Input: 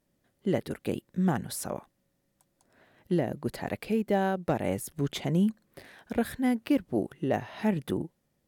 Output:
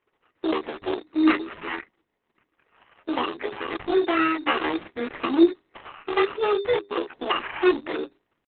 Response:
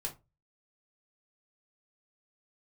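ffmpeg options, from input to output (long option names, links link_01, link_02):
-filter_complex "[0:a]aeval=exprs='0.188*(cos(1*acos(clip(val(0)/0.188,-1,1)))-cos(1*PI/2))+0.0168*(cos(4*acos(clip(val(0)/0.188,-1,1)))-cos(4*PI/2))+0.00266*(cos(6*acos(clip(val(0)/0.188,-1,1)))-cos(6*PI/2))':channel_layout=same,highpass=frequency=150:width=0.5412,highpass=frequency=150:width=1.3066,equalizer=frequency=290:width_type=q:width=4:gain=-6,equalizer=frequency=450:width_type=q:width=4:gain=-10,equalizer=frequency=1100:width_type=q:width=4:gain=10,equalizer=frequency=1700:width_type=q:width=4:gain=7,equalizer=frequency=3600:width_type=q:width=4:gain=6,lowpass=frequency=7600:width=0.5412,lowpass=frequency=7600:width=1.3066,acrusher=bits=5:mode=log:mix=0:aa=0.000001,flanger=delay=20:depth=2.4:speed=0.57,bandreject=frequency=60:width_type=h:width=6,bandreject=frequency=120:width_type=h:width=6,bandreject=frequency=180:width_type=h:width=6,bandreject=frequency=240:width_type=h:width=6,aecho=1:1:4.3:0.94,asetrate=74167,aresample=44100,atempo=0.594604,acrossover=split=2600[link_01][link_02];[link_02]acompressor=threshold=-46dB:ratio=4:attack=1:release=60[link_03];[link_01][link_03]amix=inputs=2:normalize=0,acrusher=samples=11:mix=1:aa=0.000001,volume=7.5dB" -ar 48000 -c:a libopus -b:a 6k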